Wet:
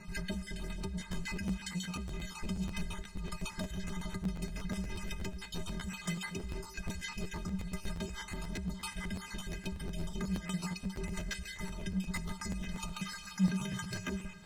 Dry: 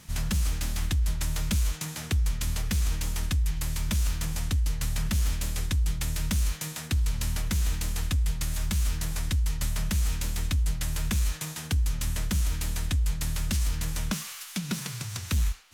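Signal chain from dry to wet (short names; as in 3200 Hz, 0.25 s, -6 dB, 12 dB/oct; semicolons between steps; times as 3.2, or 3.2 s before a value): random spectral dropouts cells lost 40%; LPF 8100 Hz 12 dB/oct; high shelf 3400 Hz -12 dB; limiter -30 dBFS, peak gain reduction 11 dB; tremolo 5.6 Hz, depth 53%; wavefolder -35 dBFS; metallic resonator 170 Hz, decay 0.25 s, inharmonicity 0.03; speed mistake 44.1 kHz file played as 48 kHz; reverb RT60 3.9 s, pre-delay 13 ms, DRR 13.5 dB; crackling interface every 0.12 s, samples 512, repeat, from 0.99; gain +17.5 dB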